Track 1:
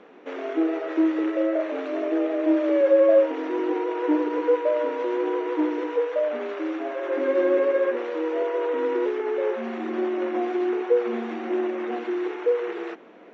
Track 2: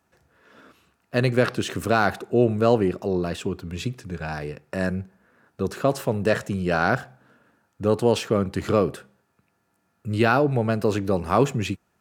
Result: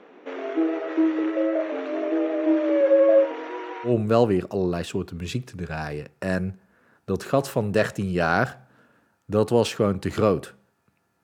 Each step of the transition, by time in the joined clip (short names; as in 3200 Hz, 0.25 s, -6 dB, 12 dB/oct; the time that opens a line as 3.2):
track 1
3.24–3.95 HPF 360 Hz -> 1200 Hz
3.89 switch to track 2 from 2.4 s, crossfade 0.12 s